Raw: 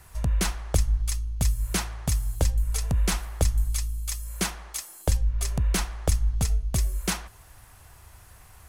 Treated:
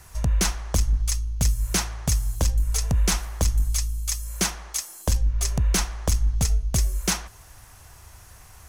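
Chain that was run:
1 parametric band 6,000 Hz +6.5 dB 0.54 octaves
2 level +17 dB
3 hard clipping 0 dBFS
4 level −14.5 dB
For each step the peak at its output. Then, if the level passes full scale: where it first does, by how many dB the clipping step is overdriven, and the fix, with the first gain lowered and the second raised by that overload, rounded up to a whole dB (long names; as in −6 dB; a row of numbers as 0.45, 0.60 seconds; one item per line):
−8.0, +9.0, 0.0, −14.5 dBFS
step 2, 9.0 dB
step 2 +8 dB, step 4 −5.5 dB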